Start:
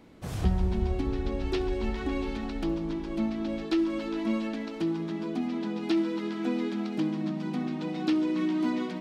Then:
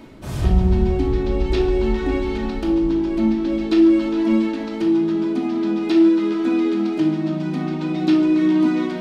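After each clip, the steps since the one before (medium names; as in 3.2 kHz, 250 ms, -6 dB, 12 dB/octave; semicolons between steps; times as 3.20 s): reverse; upward compressor, threshold -33 dBFS; reverse; simulated room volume 1000 m³, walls furnished, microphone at 2.7 m; trim +4 dB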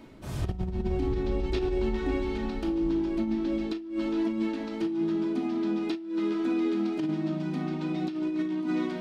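compressor with a negative ratio -18 dBFS, ratio -0.5; trim -9 dB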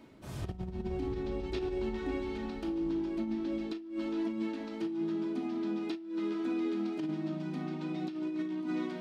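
high-pass 78 Hz 6 dB/octave; trim -5.5 dB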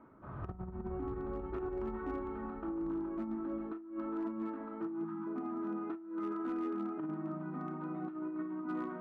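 spectral selection erased 5.05–5.27 s, 330–680 Hz; four-pole ladder low-pass 1.4 kHz, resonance 65%; hard clipper -37.5 dBFS, distortion -31 dB; trim +6.5 dB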